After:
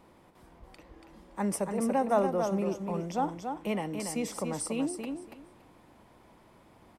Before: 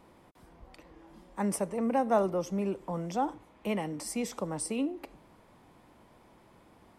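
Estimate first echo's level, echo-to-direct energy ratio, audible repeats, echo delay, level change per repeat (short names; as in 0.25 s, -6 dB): -6.0 dB, -6.0 dB, 2, 0.284 s, -15.0 dB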